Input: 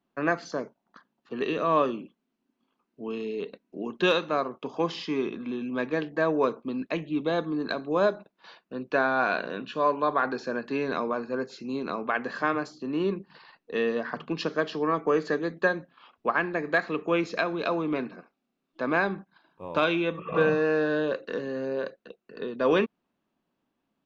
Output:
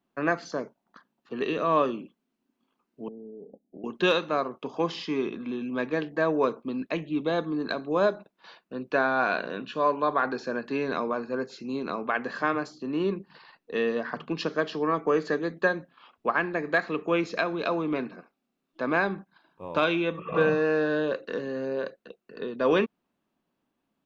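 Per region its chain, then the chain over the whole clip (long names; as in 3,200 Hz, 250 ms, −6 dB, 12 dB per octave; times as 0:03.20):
0:03.08–0:03.84: downward compressor 5 to 1, threshold −38 dBFS + Chebyshev low-pass with heavy ripple 840 Hz, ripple 3 dB
whole clip: no processing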